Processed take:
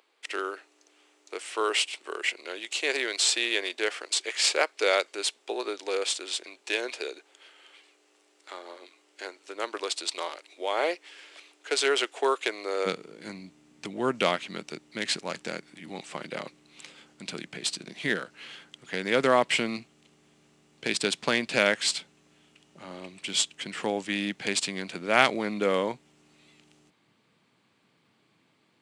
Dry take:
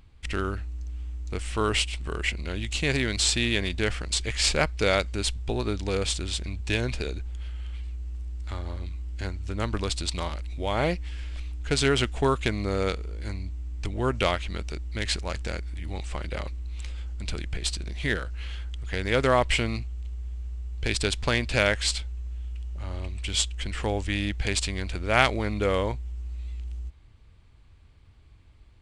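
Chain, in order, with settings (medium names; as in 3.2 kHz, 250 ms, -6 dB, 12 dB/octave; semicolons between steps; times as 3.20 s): steep high-pass 360 Hz 36 dB/octave, from 12.85 s 160 Hz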